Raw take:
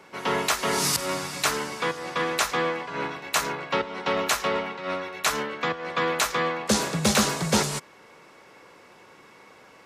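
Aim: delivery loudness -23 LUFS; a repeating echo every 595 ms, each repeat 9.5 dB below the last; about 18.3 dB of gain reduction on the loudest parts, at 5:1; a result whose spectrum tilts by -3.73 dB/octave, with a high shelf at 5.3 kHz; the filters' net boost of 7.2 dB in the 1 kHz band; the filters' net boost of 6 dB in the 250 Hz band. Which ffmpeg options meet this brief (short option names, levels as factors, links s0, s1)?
-af "equalizer=f=250:t=o:g=7.5,equalizer=f=1000:t=o:g=8.5,highshelf=f=5300:g=-4,acompressor=threshold=0.02:ratio=5,aecho=1:1:595|1190|1785|2380:0.335|0.111|0.0365|0.012,volume=4.47"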